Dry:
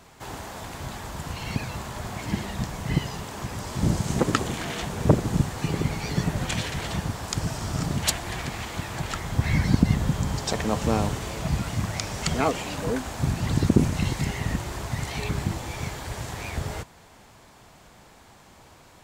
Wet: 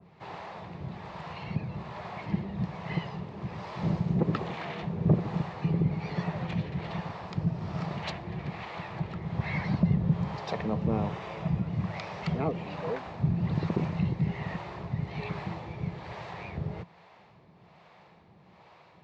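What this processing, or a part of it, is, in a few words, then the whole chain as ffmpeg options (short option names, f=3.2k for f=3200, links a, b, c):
guitar amplifier with harmonic tremolo: -filter_complex "[0:a]asettb=1/sr,asplit=3[a][b][c];[a]atrim=end=10.874[d];[b]atrim=start=10.87:end=11.66,asetpts=PTS-STARTPTS,afade=t=in:d=0.004:c=qsin,afade=t=out:st=0.786:d=0.004:c=qsin,bandreject=f=4.3k:w=11[e];[c]atrim=start=11.656[f];[d][e]acrossfade=d=0.004:c1=hsin:c2=qsin[g];[g][f]acrossfade=d=0.004:c1=qsin:c2=hsin,acrossover=split=450[h][i];[h]aeval=exprs='val(0)*(1-0.7/2+0.7/2*cos(2*PI*1.2*n/s))':c=same[j];[i]aeval=exprs='val(0)*(1-0.7/2-0.7/2*cos(2*PI*1.2*n/s))':c=same[k];[j][k]amix=inputs=2:normalize=0,asoftclip=type=tanh:threshold=-14dB,highpass=110,equalizer=f=170:t=q:w=4:g=8,equalizer=f=260:t=q:w=4:g=-9,equalizer=f=1.5k:t=q:w=4:g=-7,equalizer=f=3.2k:t=q:w=4:g=-6,lowpass=f=3.7k:w=0.5412,lowpass=f=3.7k:w=1.3066,adynamicequalizer=threshold=0.00501:dfrequency=1700:dqfactor=0.7:tfrequency=1700:tqfactor=0.7:attack=5:release=100:ratio=0.375:range=1.5:mode=cutabove:tftype=highshelf"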